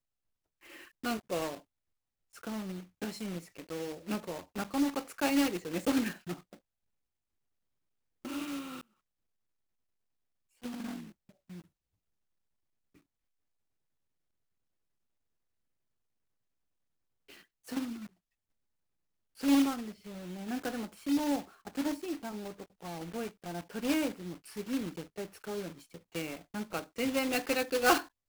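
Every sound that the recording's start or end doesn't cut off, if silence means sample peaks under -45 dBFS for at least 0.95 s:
8.25–8.81 s
10.63–11.61 s
17.29–18.07 s

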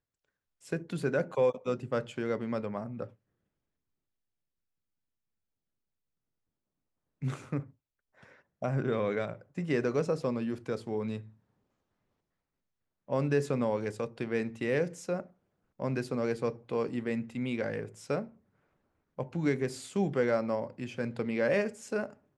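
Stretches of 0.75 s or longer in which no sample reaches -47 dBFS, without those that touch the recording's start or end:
3.08–7.22 s
11.29–13.08 s
18.29–19.19 s

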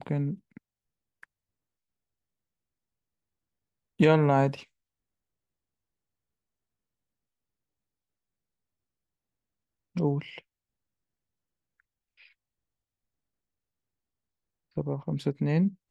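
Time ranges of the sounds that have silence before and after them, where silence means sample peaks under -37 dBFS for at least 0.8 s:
4.00–4.60 s
9.96–10.39 s

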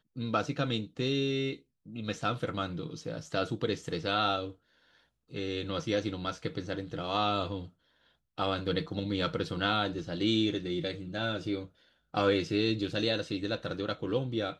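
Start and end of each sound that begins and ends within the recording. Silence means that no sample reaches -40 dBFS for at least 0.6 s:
5.33–7.66 s

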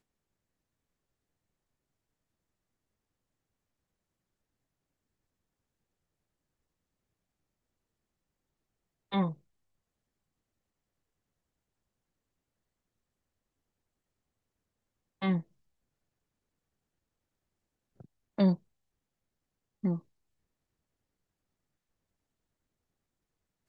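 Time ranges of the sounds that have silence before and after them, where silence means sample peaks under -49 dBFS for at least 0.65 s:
9.12–9.35 s
15.22–15.42 s
18.00–18.56 s
19.83–20.00 s

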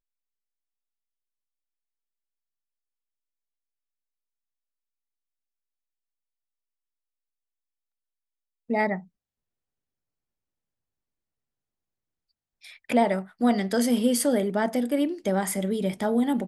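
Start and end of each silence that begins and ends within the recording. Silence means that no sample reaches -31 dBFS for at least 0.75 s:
8.98–12.89 s

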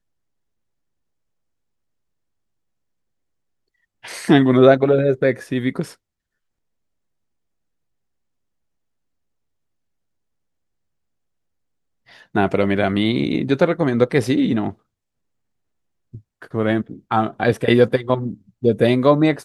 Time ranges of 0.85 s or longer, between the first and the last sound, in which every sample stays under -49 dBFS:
5.95–12.07 s
14.75–16.13 s

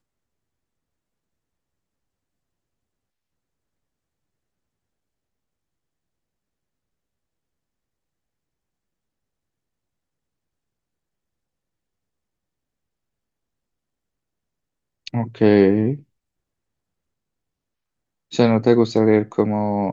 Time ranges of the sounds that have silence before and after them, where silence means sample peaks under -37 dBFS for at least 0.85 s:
15.07–16.00 s

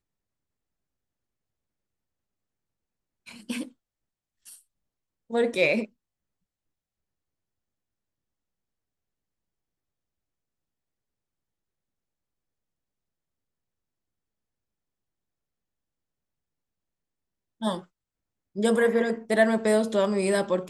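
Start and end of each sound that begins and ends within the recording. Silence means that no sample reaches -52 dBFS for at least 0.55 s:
3.26–3.72 s
4.45–4.61 s
5.30–5.87 s
17.61–17.85 s

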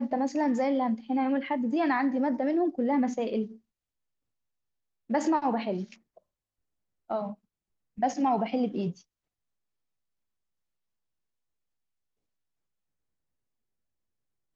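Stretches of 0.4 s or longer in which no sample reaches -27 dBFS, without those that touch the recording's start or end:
3.43–5.11 s
5.81–7.11 s
7.24–8.03 s

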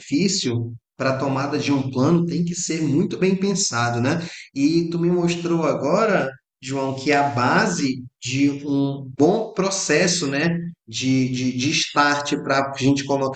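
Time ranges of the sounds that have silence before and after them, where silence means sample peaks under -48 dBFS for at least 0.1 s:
0.99–6.37 s
6.62–8.08 s
8.22–10.74 s

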